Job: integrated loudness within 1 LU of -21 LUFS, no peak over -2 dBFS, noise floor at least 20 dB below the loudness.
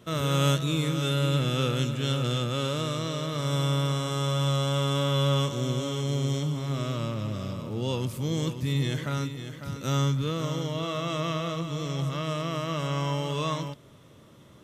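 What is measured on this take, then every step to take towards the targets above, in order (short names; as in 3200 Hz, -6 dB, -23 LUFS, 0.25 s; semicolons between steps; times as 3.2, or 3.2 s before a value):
loudness -28.5 LUFS; peak -13.5 dBFS; loudness target -21.0 LUFS
-> gain +7.5 dB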